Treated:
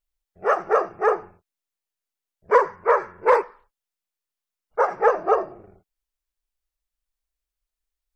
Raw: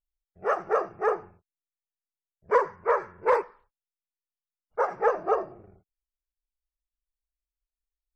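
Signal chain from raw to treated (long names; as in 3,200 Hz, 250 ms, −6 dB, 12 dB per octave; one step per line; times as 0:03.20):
parametric band 110 Hz −5.5 dB 2.1 octaves
level +6 dB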